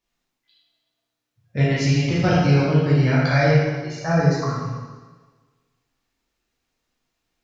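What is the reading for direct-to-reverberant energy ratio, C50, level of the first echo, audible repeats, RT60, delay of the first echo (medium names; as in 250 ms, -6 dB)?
-8.0 dB, -1.5 dB, no echo, no echo, 1.4 s, no echo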